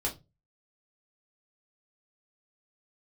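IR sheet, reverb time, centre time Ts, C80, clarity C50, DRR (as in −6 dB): 0.25 s, 15 ms, 23.5 dB, 14.5 dB, −2.5 dB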